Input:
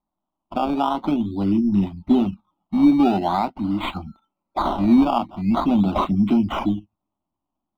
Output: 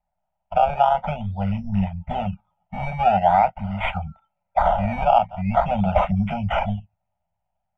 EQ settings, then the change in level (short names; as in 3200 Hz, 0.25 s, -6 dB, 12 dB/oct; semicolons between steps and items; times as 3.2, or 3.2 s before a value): Chebyshev band-stop 160–650 Hz, order 2; LPF 3500 Hz 12 dB/oct; fixed phaser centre 1100 Hz, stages 6; +8.5 dB